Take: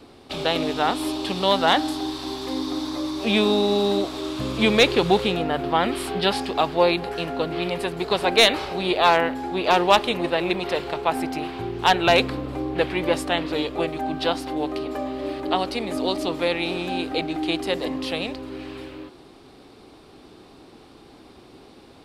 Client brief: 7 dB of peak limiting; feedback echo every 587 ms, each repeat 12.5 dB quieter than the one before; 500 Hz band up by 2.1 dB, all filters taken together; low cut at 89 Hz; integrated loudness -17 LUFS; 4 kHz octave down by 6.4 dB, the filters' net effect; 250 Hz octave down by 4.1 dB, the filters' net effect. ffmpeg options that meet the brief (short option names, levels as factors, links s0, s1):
-af "highpass=89,equalizer=f=250:t=o:g=-8,equalizer=f=500:t=o:g=5,equalizer=f=4000:t=o:g=-8,alimiter=limit=0.316:level=0:latency=1,aecho=1:1:587|1174|1761:0.237|0.0569|0.0137,volume=2.37"